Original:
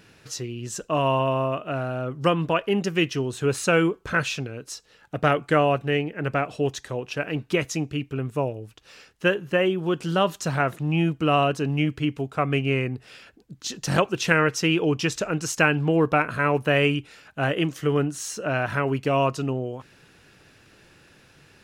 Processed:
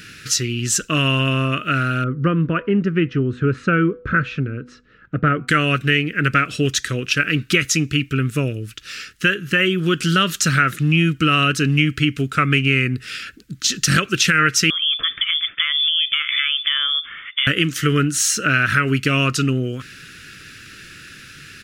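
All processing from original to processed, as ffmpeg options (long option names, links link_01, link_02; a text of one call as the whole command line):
ffmpeg -i in.wav -filter_complex "[0:a]asettb=1/sr,asplit=3[link_01][link_02][link_03];[link_01]atrim=end=2.044[link_04];[link_02]atrim=start=2.04:end=5.48,asetpts=PTS-STARTPTS,afade=type=in:duration=0.004:curve=qsin,afade=type=out:start_time=3.436:duration=0.004:curve=qsin,lowpass=1000,bandreject=frequency=246.4:width_type=h:width=4,bandreject=frequency=492.8:width_type=h:width=4,bandreject=frequency=739.2:width_type=h:width=4,bandreject=frequency=985.6:width_type=h:width=4[link_05];[link_03]atrim=start=5.476[link_06];[link_04][link_05]acrossfade=duration=0.004:curve1=hsin:curve2=qsin[link_07];[link_07][link_06]acrossfade=duration=0.004:curve1=qsin:curve2=hsin,asettb=1/sr,asplit=3[link_08][link_09][link_10];[link_08]atrim=end=14.704[link_11];[link_09]atrim=start=14.7:end=17.47,asetpts=PTS-STARTPTS,afade=type=in:duration=0.004:curve=qsin,afade=type=out:start_time=2.766:duration=0.004:curve=qsin,acompressor=threshold=-32dB:ratio=6:attack=3.2:release=140:knee=1:detection=peak,lowpass=frequency=3100:width_type=q:width=0.5098,lowpass=frequency=3100:width_type=q:width=0.6013,lowpass=frequency=3100:width_type=q:width=0.9,lowpass=frequency=3100:width_type=q:width=2.563,afreqshift=-3600[link_12];[link_10]atrim=start=17.466[link_13];[link_11][link_12]acrossfade=duration=0.004:curve1=hsin:curve2=qsin[link_14];[link_14][link_13]acrossfade=duration=0.004:curve1=qsin:curve2=hsin,firequalizer=gain_entry='entry(260,0);entry(860,-24);entry(1300,6)':delay=0.05:min_phase=1,acompressor=threshold=-26dB:ratio=2,alimiter=level_in=14dB:limit=-1dB:release=50:level=0:latency=1,volume=-3.5dB" out.wav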